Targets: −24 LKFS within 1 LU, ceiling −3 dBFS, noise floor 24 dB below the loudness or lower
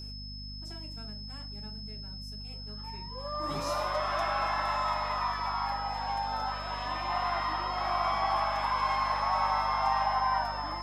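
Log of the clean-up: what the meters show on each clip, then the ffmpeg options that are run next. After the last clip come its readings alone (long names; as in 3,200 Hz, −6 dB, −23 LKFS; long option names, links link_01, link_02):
mains hum 50 Hz; hum harmonics up to 250 Hz; level of the hum −41 dBFS; interfering tone 5,200 Hz; level of the tone −43 dBFS; integrated loudness −31.5 LKFS; sample peak −16.0 dBFS; target loudness −24.0 LKFS
→ -af "bandreject=frequency=50:width_type=h:width=6,bandreject=frequency=100:width_type=h:width=6,bandreject=frequency=150:width_type=h:width=6,bandreject=frequency=200:width_type=h:width=6,bandreject=frequency=250:width_type=h:width=6"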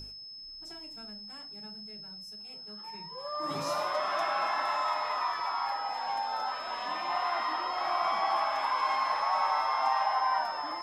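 mains hum none found; interfering tone 5,200 Hz; level of the tone −43 dBFS
→ -af "bandreject=frequency=5200:width=30"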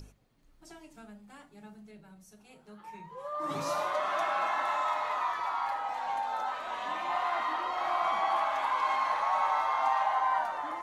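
interfering tone none found; integrated loudness −30.5 LKFS; sample peak −16.5 dBFS; target loudness −24.0 LKFS
→ -af "volume=6.5dB"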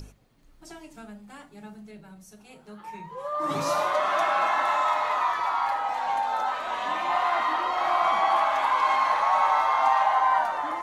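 integrated loudness −24.0 LKFS; sample peak −10.0 dBFS; background noise floor −54 dBFS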